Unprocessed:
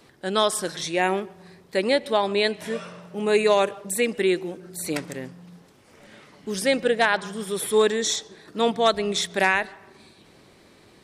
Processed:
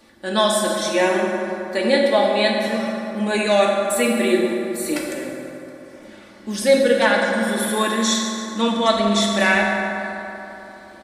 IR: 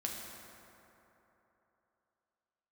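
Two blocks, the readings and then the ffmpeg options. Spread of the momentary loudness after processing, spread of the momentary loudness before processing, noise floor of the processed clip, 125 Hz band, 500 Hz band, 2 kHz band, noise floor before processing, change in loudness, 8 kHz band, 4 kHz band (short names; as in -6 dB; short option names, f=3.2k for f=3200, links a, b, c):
14 LU, 13 LU, -43 dBFS, +5.5 dB, +4.0 dB, +5.0 dB, -54 dBFS, +4.5 dB, +3.5 dB, +4.0 dB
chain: -filter_complex "[0:a]aecho=1:1:3.5:0.64[a];[1:a]atrim=start_sample=2205[b];[a][b]afir=irnorm=-1:irlink=0,volume=2dB"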